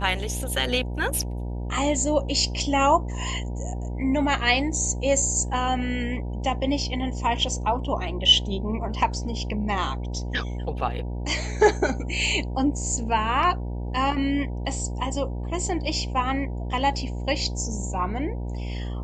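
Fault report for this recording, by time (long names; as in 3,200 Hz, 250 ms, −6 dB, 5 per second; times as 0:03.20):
mains buzz 60 Hz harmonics 16 −30 dBFS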